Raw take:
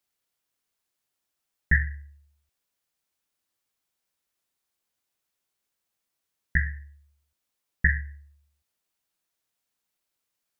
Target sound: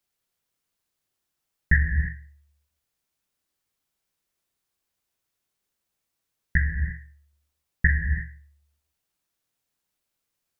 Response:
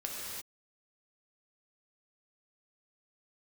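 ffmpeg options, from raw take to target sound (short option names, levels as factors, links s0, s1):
-filter_complex "[0:a]asplit=2[s0][s1];[1:a]atrim=start_sample=2205,lowshelf=f=350:g=11[s2];[s1][s2]afir=irnorm=-1:irlink=0,volume=0.473[s3];[s0][s3]amix=inputs=2:normalize=0,volume=0.75"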